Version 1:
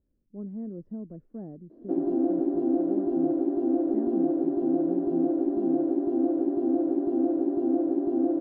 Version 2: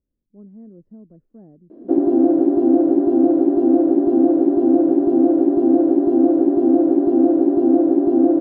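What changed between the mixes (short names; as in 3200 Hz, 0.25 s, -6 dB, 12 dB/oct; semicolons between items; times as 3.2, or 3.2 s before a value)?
speech -5.0 dB; background +10.5 dB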